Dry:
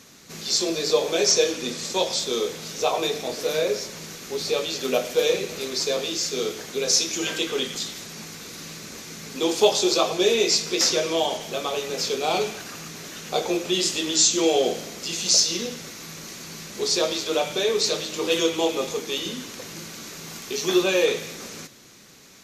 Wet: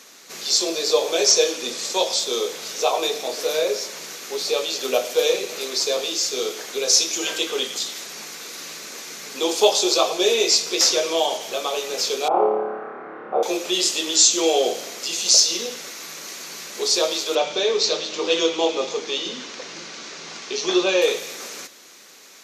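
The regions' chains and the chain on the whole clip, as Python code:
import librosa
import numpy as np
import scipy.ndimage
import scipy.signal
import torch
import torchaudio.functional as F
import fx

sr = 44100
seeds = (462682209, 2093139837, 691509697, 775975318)

y = fx.chain(x, sr, fx.lowpass(hz=1300.0, slope=24),
    fx.room_flutter(wall_m=4.8, rt60_s=1.2), at=(12.28, 13.43))
y = fx.chain(y, sr, fx.lowpass(hz=6100.0, slope=24),
    fx.low_shelf(hz=150.0, db=8.5), at=(17.35, 21.02))
y = scipy.signal.sosfilt(scipy.signal.butter(2, 430.0, 'highpass', fs=sr, output='sos'), y)
y = fx.dynamic_eq(y, sr, hz=1800.0, q=1.2, threshold_db=-39.0, ratio=4.0, max_db=-4)
y = F.gain(torch.from_numpy(y), 4.0).numpy()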